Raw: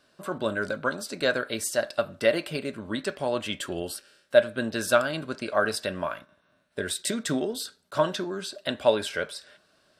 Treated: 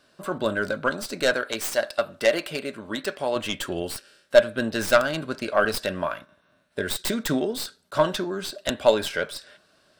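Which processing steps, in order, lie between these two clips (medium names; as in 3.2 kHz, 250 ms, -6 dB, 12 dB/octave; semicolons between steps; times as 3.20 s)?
tracing distortion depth 0.1 ms; 1.34–3.36 s: bass shelf 210 Hz -10 dB; trim +3 dB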